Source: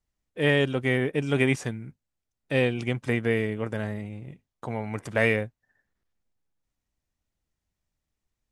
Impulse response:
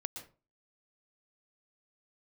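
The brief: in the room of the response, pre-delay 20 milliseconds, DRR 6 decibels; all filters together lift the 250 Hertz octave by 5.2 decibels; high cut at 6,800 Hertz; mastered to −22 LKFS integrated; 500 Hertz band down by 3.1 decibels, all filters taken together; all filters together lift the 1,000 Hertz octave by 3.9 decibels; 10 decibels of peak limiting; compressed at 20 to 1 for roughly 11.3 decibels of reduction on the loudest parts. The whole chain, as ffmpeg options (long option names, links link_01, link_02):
-filter_complex "[0:a]lowpass=6800,equalizer=frequency=250:width_type=o:gain=7.5,equalizer=frequency=500:width_type=o:gain=-8,equalizer=frequency=1000:width_type=o:gain=8,acompressor=threshold=-26dB:ratio=20,alimiter=limit=-22dB:level=0:latency=1,asplit=2[link_01][link_02];[1:a]atrim=start_sample=2205,adelay=20[link_03];[link_02][link_03]afir=irnorm=-1:irlink=0,volume=-5dB[link_04];[link_01][link_04]amix=inputs=2:normalize=0,volume=12dB"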